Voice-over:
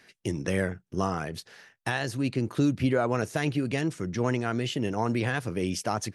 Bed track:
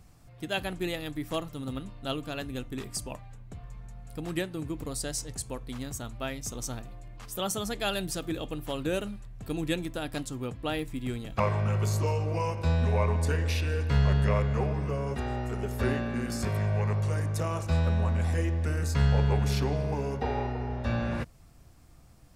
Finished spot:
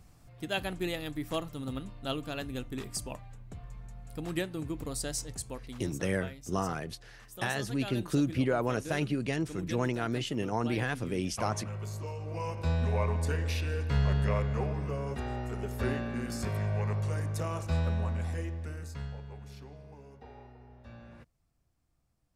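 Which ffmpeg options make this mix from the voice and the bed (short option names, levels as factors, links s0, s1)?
-filter_complex "[0:a]adelay=5550,volume=0.668[s0];[1:a]volume=2,afade=t=out:st=5.2:d=0.97:silence=0.334965,afade=t=in:st=12.17:d=0.45:silence=0.421697,afade=t=out:st=17.79:d=1.42:silence=0.141254[s1];[s0][s1]amix=inputs=2:normalize=0"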